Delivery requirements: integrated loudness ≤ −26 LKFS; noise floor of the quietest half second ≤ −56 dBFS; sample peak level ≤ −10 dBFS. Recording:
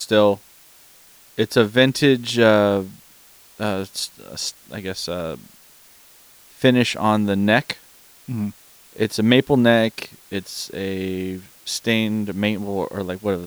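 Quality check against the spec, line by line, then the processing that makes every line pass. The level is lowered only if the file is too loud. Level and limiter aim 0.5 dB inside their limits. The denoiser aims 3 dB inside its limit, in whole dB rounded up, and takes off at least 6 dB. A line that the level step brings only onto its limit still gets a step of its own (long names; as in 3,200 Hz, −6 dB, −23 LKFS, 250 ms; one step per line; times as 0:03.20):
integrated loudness −20.5 LKFS: out of spec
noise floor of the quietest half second −50 dBFS: out of spec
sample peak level −2.5 dBFS: out of spec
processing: broadband denoise 6 dB, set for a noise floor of −50 dBFS
level −6 dB
brickwall limiter −10.5 dBFS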